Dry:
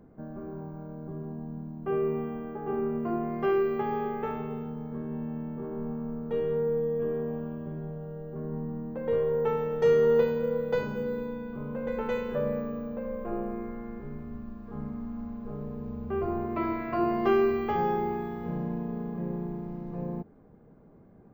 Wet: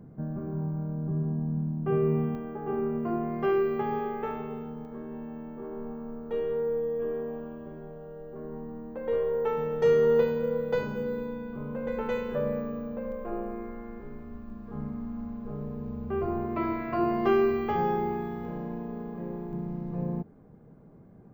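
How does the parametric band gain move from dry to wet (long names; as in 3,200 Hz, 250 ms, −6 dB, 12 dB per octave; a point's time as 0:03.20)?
parametric band 140 Hz 1.1 octaves
+12 dB
from 0:02.35 +1.5 dB
from 0:03.99 −5 dB
from 0:04.85 −11.5 dB
from 0:09.57 0 dB
from 0:13.12 −8 dB
from 0:14.50 +2 dB
from 0:18.45 −7 dB
from 0:19.53 +5 dB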